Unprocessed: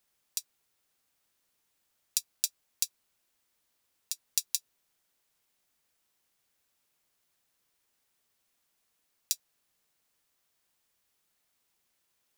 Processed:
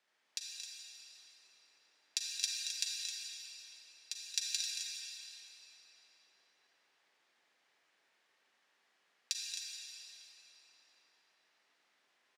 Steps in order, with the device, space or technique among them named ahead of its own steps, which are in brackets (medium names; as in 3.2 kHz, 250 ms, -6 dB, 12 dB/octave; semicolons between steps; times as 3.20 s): station announcement (band-pass 310–4200 Hz; peaking EQ 1.8 kHz +5 dB 0.5 oct; loudspeakers at several distances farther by 78 m -10 dB, 90 m -9 dB; reverberation RT60 4.1 s, pre-delay 37 ms, DRR -2.5 dB); trim +1.5 dB